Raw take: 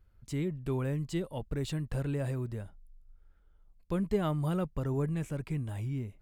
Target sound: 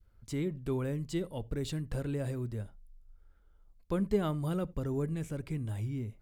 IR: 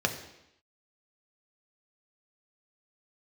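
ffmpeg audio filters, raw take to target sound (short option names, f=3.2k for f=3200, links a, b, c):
-filter_complex "[0:a]adynamicequalizer=threshold=0.00282:dfrequency=960:dqfactor=0.76:tfrequency=960:tqfactor=0.76:attack=5:release=100:ratio=0.375:range=3.5:mode=cutabove:tftype=bell,asplit=2[a][b];[1:a]atrim=start_sample=2205,atrim=end_sample=4410[c];[b][c]afir=irnorm=-1:irlink=0,volume=-22.5dB[d];[a][d]amix=inputs=2:normalize=0"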